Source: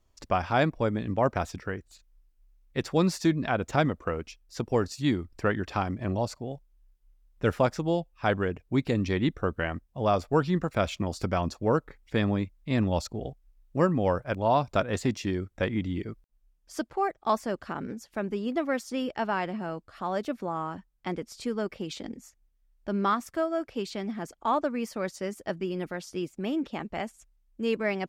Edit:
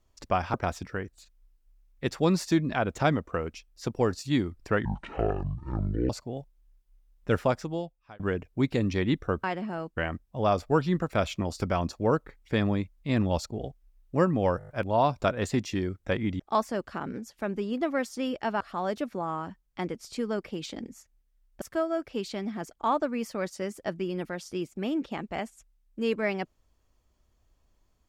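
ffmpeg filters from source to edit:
-filter_complex "[0:a]asplit=15[s0][s1][s2][s3][s4][s5][s6][s7][s8][s9][s10][s11][s12][s13][s14];[s0]atrim=end=0.542[s15];[s1]atrim=start=1.268:end=5.584[s16];[s2]atrim=start=5.58:end=6.24,asetpts=PTS-STARTPTS,asetrate=23373,aresample=44100[s17];[s3]atrim=start=6.236:end=8.34,asetpts=PTS-STARTPTS,afade=t=out:st=1.274:d=0.83[s18];[s4]atrim=start=8.34:end=9.582,asetpts=PTS-STARTPTS,afade=t=in:d=0.004:c=hsin[s19];[s5]atrim=start=19.348:end=19.882[s20];[s6]atrim=start=9.578:end=14.222[s21];[s7]atrim=start=14.198:end=14.222[s22];[s8]atrim=start=14.198:end=14.222[s23];[s9]atrim=start=14.198:end=14.222[s24];[s10]atrim=start=14.198:end=14.222[s25];[s11]atrim=start=14.198:end=15.912[s26];[s12]atrim=start=17.138:end=19.352[s27];[s13]atrim=start=19.878:end=22.892[s28];[s14]atrim=start=23.228[s29];[s15][s16]acrossfade=d=0.004:c1=hsin:c2=hsin[s30];[s30][s17]acrossfade=d=0.004:c1=hsin:c2=hsin[s31];[s18][s19]concat=n=2:v=0:a=1[s32];[s31][s32]acrossfade=d=0.004:c1=hsin:c2=hsin[s33];[s33][s20]acrossfade=d=0.004:c1=hsin:c2=hsin[s34];[s34][s21]acrossfade=d=0.004:c1=hsin:c2=hsin[s35];[s35][s22]acrossfade=d=0.004:c1=hsin:c2=hsin[s36];[s36][s23]acrossfade=d=0.004:c1=hsin:c2=hsin[s37];[s37][s24]acrossfade=d=0.004:c1=hsin:c2=hsin[s38];[s38][s25]acrossfade=d=0.004:c1=hsin:c2=hsin[s39];[s39][s26]acrossfade=d=0.004:c1=hsin:c2=hsin[s40];[s40][s27]acrossfade=d=0.004:c1=hsin:c2=hsin[s41];[s41][s28]acrossfade=d=0.004:c1=hsin:c2=hsin[s42];[s42][s29]acrossfade=d=0.004:c1=hsin:c2=hsin"

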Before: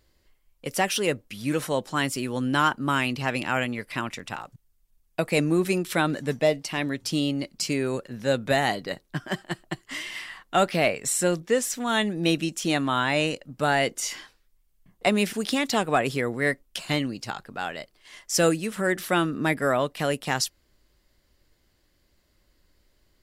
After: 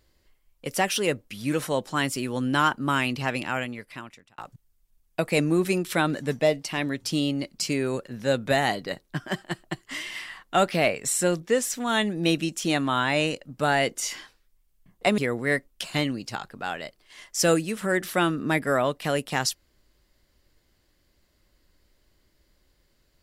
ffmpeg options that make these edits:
-filter_complex "[0:a]asplit=3[s0][s1][s2];[s0]atrim=end=4.38,asetpts=PTS-STARTPTS,afade=t=out:st=3.22:d=1.16[s3];[s1]atrim=start=4.38:end=15.182,asetpts=PTS-STARTPTS,afade=t=in:d=0.004:c=hsin[s4];[s2]atrim=start=16.128[s5];[s3][s4]concat=n=2:v=0:a=1[s6];[s6][s5]acrossfade=d=0.004:c1=hsin:c2=hsin"

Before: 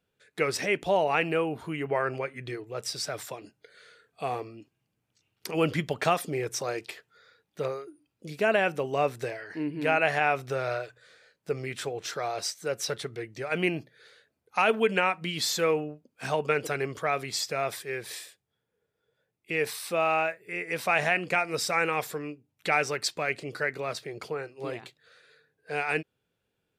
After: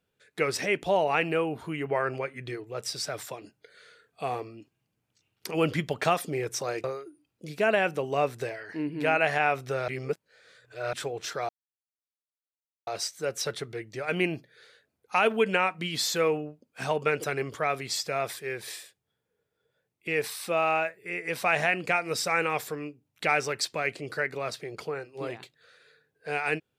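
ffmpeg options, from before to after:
-filter_complex "[0:a]asplit=5[s0][s1][s2][s3][s4];[s0]atrim=end=6.842[s5];[s1]atrim=start=7.648:end=10.692[s6];[s2]atrim=start=10.688:end=11.742,asetpts=PTS-STARTPTS,areverse[s7];[s3]atrim=start=11.738:end=12.3,asetpts=PTS-STARTPTS,afade=t=out:st=0.558:d=0.004:c=hsin,apad=pad_dur=1.38[s8];[s4]atrim=start=12.3,asetpts=PTS-STARTPTS,afade=t=in:d=0.004:c=hsin[s9];[s5][s6]acrossfade=d=0.004:c1=hsin:c2=hsin[s10];[s10][s7]acrossfade=d=0.004:c1=hsin:c2=hsin[s11];[s8][s9]concat=n=2:v=0:a=1[s12];[s11][s12]acrossfade=d=0.004:c1=hsin:c2=hsin"

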